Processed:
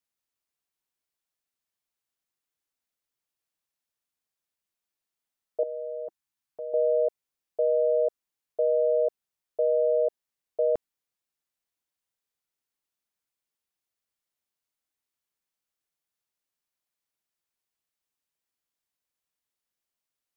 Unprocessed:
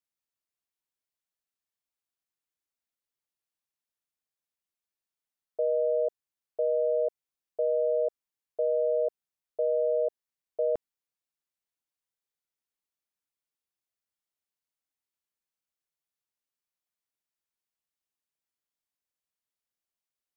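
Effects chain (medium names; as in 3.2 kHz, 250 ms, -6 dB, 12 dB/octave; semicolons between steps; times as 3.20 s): 5.63–6.74 s: high-order bell 510 Hz -11.5 dB 1 oct; trim +3 dB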